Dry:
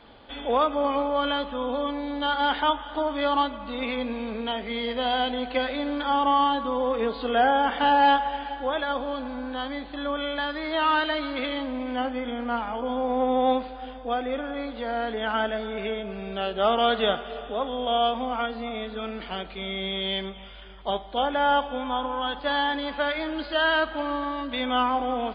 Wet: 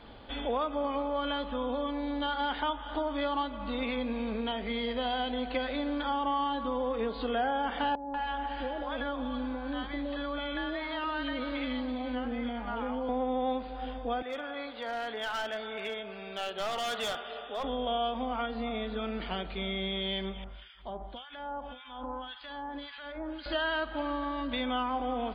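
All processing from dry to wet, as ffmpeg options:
-filter_complex "[0:a]asettb=1/sr,asplit=3[a][b][c];[a]atrim=end=7.954[d];[b]atrim=start=7.95:end=13.09,asetpts=PTS-STARTPTS,afade=t=in:d=0.004:c=qsin,afade=t=out:st=5.136:d=0.004:c=qsin,acompressor=threshold=-28dB:ratio=2.5:attack=3.2:release=140:knee=1:detection=peak,acrossover=split=720|4300[e][f][g];[f]adelay=190[h];[g]adelay=520[i];[e][h][i]amix=inputs=3:normalize=0,atrim=end_sample=226674[j];[c]atrim=start=13.086[k];[d][j]acrossfade=d=0.004:c1=hsin:c2=qsin[l];[l][k]acrossfade=d=0.004:c1=qsin:c2=hsin,asettb=1/sr,asplit=3[m][n][o];[m]atrim=end=14.224[p];[n]atrim=start=14.22:end=17.64,asetpts=PTS-STARTPTS,afade=t=in:d=0.004:c=qsin,afade=t=out:st=3.416:d=0.004:c=qsin,highpass=f=990:p=1,volume=28dB,asoftclip=hard,volume=-28dB[q];[o]atrim=start=17.636[r];[p][q]acrossfade=d=0.004:c1=hsin:c2=qsin[s];[s][r]acrossfade=d=0.004:c1=qsin:c2=hsin,asettb=1/sr,asplit=3[t][u][v];[t]atrim=end=20.444[w];[u]atrim=start=20.44:end=23.46,asetpts=PTS-STARTPTS,afade=t=in:d=0.004:c=qsin,afade=t=out:st=3.016:d=0.004:c=qsin,bandreject=f=450:w=7.4,acompressor=threshold=-31dB:ratio=12:attack=3.2:release=140:knee=1:detection=peak,acrossover=split=1400[x][y];[x]aeval=exprs='val(0)*(1-1/2+1/2*cos(2*PI*1.8*n/s))':c=same[z];[y]aeval=exprs='val(0)*(1-1/2-1/2*cos(2*PI*1.8*n/s))':c=same[aa];[z][aa]amix=inputs=2:normalize=0[ab];[v]atrim=start=23.456[ac];[w][ab]acrossfade=d=0.004:c1=hsin:c2=qsin[ad];[ad][ac]acrossfade=d=0.004:c1=qsin:c2=hsin,lowshelf=f=180:g=6.5,acompressor=threshold=-30dB:ratio=2.5,volume=-1dB"

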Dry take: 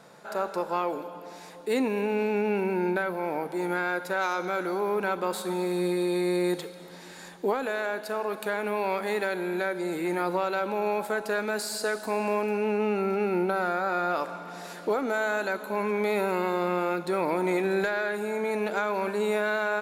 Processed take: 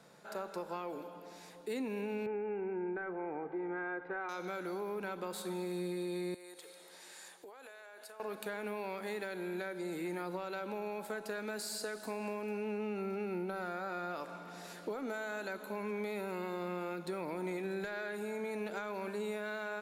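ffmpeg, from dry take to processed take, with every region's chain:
-filter_complex "[0:a]asettb=1/sr,asplit=3[a][b][c];[a]atrim=end=2.264[d];[b]atrim=start=2.26:end=4.29,asetpts=PTS-STARTPTS,afade=t=in:d=0.004:c=qsin,afade=t=out:st=2.026:d=0.004:c=qsin,lowpass=f=2k:w=0.5412,lowpass=f=2k:w=1.3066,aecho=1:1:2.5:0.54,atrim=end_sample=89523[e];[c]atrim=start=4.286[f];[d][e]acrossfade=d=0.004:c1=hsin:c2=qsin[g];[g][f]acrossfade=d=0.004:c1=qsin:c2=hsin,asettb=1/sr,asplit=3[h][i][j];[h]atrim=end=6.344[k];[i]atrim=start=6.34:end=8.2,asetpts=PTS-STARTPTS,afade=t=in:d=0.004:c=qsin,afade=t=out:st=1.856:d=0.004:c=qsin,highpass=530,equalizer=f=9.2k:w=1.4:g=7,acompressor=threshold=-40dB:ratio=10:attack=3.2:release=140:knee=1:detection=peak[l];[j]atrim=start=8.196[m];[k][l]acrossfade=d=0.004:c1=hsin:c2=qsin[n];[n][m]acrossfade=d=0.004:c1=qsin:c2=hsin,equalizer=f=900:t=o:w=2:g=-4,acrossover=split=160[o][p];[p]acompressor=threshold=-30dB:ratio=6[q];[o][q]amix=inputs=2:normalize=0,volume=-6dB"

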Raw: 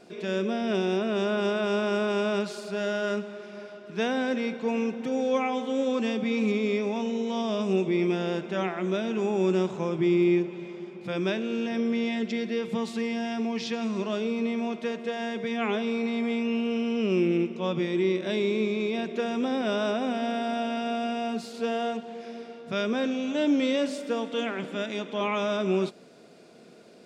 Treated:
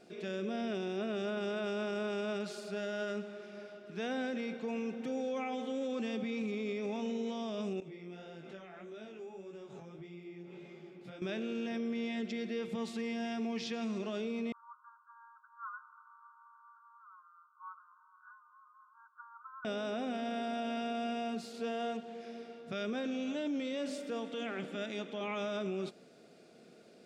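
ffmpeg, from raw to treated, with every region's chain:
-filter_complex "[0:a]asettb=1/sr,asplit=3[a][b][c];[a]atrim=end=7.804[d];[b]atrim=start=7.8:end=11.22,asetpts=PTS-STARTPTS,afade=t=in:d=0.004:c=qsin,afade=t=out:st=3.416:d=0.004:c=qsin,aecho=1:1:7.2:0.36,atrim=end_sample=150822,acompressor=threshold=-35dB:ratio=8:attack=3.2:release=140:knee=1:detection=peak,flanger=delay=18:depth=4.7:speed=1.7[e];[c]atrim=start=11.216[f];[d][e]acrossfade=d=0.004:c1=hsin:c2=qsin[g];[g][f]acrossfade=d=0.004:c1=qsin:c2=hsin,asettb=1/sr,asplit=3[h][i][j];[h]atrim=end=14.524[k];[i]atrim=start=14.52:end=19.65,asetpts=PTS-STARTPTS,afade=t=in:d=0.004:c=qsin,afade=t=out:st=5.126:d=0.004:c=qsin,asuperpass=centerf=1200:order=20:qfactor=2.1,aecho=1:1:7.5:0.68,atrim=end_sample=226233[l];[j]atrim=start=19.646[m];[k][l]acrossfade=d=0.004:c1=hsin:c2=qsin[n];[n][m]acrossfade=d=0.004:c1=qsin:c2=hsin,bandreject=f=990:w=7.3,alimiter=limit=-23dB:level=0:latency=1:release=31,volume=-6.5dB"

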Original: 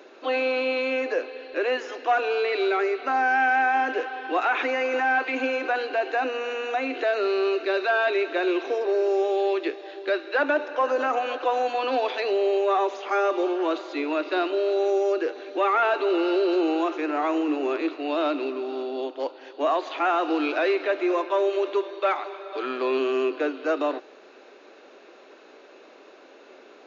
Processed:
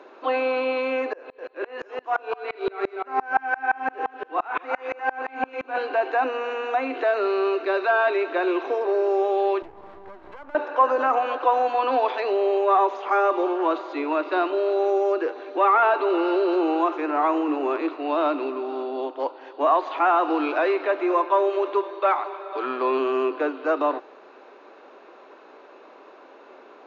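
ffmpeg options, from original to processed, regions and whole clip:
-filter_complex "[0:a]asettb=1/sr,asplit=3[a][b][c];[a]atrim=end=1.134[d];[b]atrim=start=1.13:end=5.78,asetpts=PTS-STARTPTS,afade=t=in:d=0.004:c=qsin,afade=t=out:st=4.646:d=0.004:c=qsin,aecho=1:1:41|253:0.422|0.562,atrim=end_sample=205065,aeval=exprs='val(0)*pow(10,-30*if(lt(mod(-5.8*n/s,1),2*abs(-5.8)/1000),1-mod(-5.8*n/s,1)/(2*abs(-5.8)/1000),(mod(-5.8*n/s,1)-2*abs(-5.8)/1000)/(1-2*abs(-5.8)/1000))/20)':c=same[e];[c]atrim=start=5.776[f];[d][e]acrossfade=d=0.004:c1=hsin:c2=qsin[g];[g][f]acrossfade=d=0.004:c1=qsin:c2=hsin,asettb=1/sr,asplit=3[h][i][j];[h]atrim=end=9.624[k];[i]atrim=start=9.62:end=10.55,asetpts=PTS-STARTPTS,afade=t=in:d=0.004:c=qsin,afade=t=out:st=0.926:d=0.004:c=qsin,lowpass=f=1.1k:p=1,acompressor=threshold=-37dB:ratio=10:attack=3.2:release=140:knee=1:detection=peak,aeval=exprs='max(val(0),0)':c=same[l];[j]atrim=start=10.546[m];[k][l]acrossfade=d=0.004:c1=hsin:c2=qsin[n];[n][m]acrossfade=d=0.004:c1=qsin:c2=hsin,lowpass=f=2.4k:p=1,equalizer=f=1k:w=1.7:g=8.5"

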